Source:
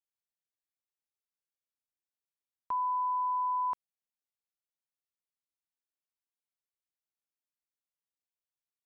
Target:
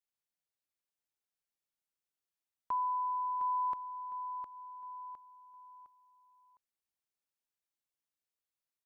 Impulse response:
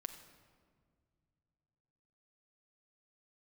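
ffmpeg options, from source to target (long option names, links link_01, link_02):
-af "aecho=1:1:709|1418|2127|2836:0.447|0.152|0.0516|0.0176,adynamicequalizer=threshold=0.00891:dfrequency=870:dqfactor=1.1:tfrequency=870:tqfactor=1.1:attack=5:release=100:ratio=0.375:range=2.5:mode=cutabove:tftype=bell,volume=-1dB"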